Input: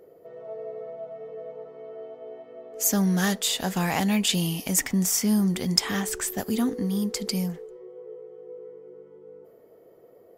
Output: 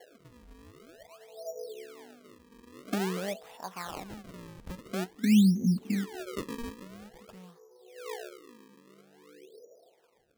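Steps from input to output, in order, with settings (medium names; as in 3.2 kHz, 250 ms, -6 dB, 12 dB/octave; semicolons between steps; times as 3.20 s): reverse echo 50 ms -20 dB; wah-wah 0.31 Hz 210–1300 Hz, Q 6.6; bass shelf 460 Hz +10.5 dB; decimation with a swept rate 35×, swing 160% 0.49 Hz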